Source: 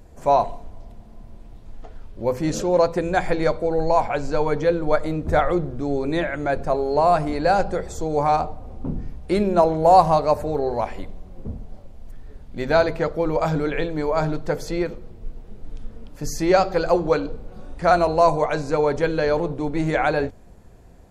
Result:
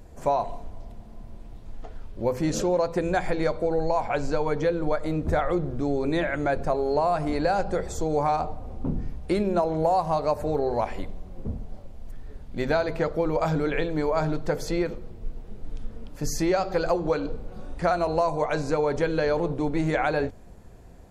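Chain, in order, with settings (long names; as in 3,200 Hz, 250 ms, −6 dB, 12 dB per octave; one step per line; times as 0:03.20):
downward compressor 6 to 1, threshold −20 dBFS, peak gain reduction 12 dB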